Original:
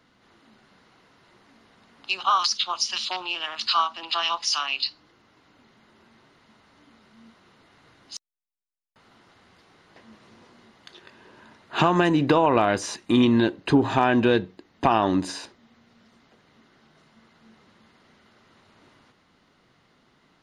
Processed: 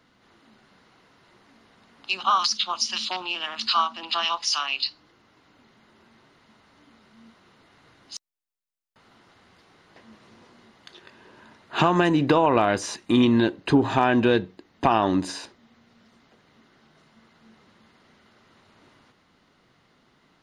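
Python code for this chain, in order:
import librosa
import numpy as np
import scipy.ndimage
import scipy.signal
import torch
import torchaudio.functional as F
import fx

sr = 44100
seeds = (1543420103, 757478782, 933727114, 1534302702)

y = fx.peak_eq(x, sr, hz=220.0, db=11.5, octaves=0.5, at=(2.13, 4.25))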